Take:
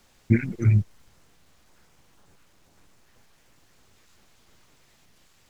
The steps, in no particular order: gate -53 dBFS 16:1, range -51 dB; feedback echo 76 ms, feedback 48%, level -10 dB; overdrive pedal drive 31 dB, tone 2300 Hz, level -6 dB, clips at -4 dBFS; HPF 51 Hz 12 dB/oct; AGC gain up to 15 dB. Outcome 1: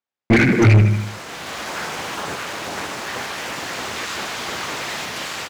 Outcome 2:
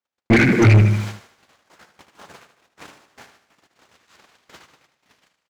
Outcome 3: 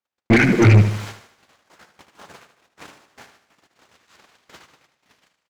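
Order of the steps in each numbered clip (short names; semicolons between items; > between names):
HPF > AGC > gate > feedback echo > overdrive pedal; gate > HPF > AGC > feedback echo > overdrive pedal; gate > HPF > AGC > overdrive pedal > feedback echo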